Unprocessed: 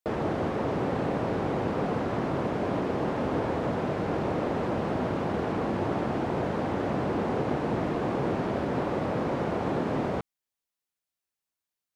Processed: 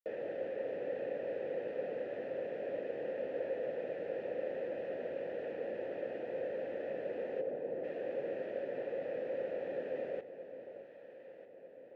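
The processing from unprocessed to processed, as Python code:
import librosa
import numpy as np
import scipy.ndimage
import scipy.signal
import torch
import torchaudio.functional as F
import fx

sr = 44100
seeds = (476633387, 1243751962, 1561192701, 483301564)

y = fx.envelope_sharpen(x, sr, power=1.5, at=(7.4, 7.83), fade=0.02)
y = fx.vowel_filter(y, sr, vowel='e')
y = fx.echo_alternate(y, sr, ms=622, hz=830.0, feedback_pct=71, wet_db=-10)
y = y * librosa.db_to_amplitude(-1.0)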